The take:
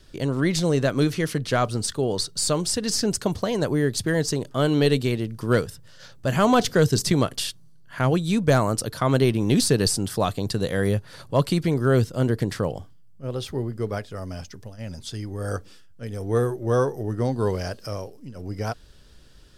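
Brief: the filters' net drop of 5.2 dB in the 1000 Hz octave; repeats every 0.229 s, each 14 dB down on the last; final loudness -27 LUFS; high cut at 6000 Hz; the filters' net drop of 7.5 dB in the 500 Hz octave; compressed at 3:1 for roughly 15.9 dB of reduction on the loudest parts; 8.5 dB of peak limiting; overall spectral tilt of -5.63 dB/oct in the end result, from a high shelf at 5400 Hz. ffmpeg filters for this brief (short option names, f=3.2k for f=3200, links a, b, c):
-af "lowpass=6k,equalizer=f=500:t=o:g=-8.5,equalizer=f=1k:t=o:g=-4,highshelf=f=5.4k:g=-5.5,acompressor=threshold=-40dB:ratio=3,alimiter=level_in=9.5dB:limit=-24dB:level=0:latency=1,volume=-9.5dB,aecho=1:1:229|458:0.2|0.0399,volume=16dB"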